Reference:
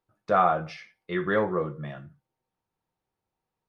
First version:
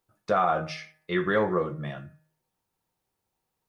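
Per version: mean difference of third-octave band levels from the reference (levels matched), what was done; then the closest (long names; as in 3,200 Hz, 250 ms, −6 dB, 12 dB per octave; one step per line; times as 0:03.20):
3.0 dB: high-shelf EQ 4,500 Hz +9 dB
hum removal 155.6 Hz, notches 17
brickwall limiter −16 dBFS, peak gain reduction 6.5 dB
level +2 dB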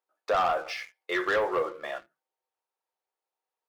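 9.5 dB: high-pass filter 440 Hz 24 dB per octave
downward compressor 2.5 to 1, threshold −29 dBFS, peak gain reduction 8.5 dB
leveller curve on the samples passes 2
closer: first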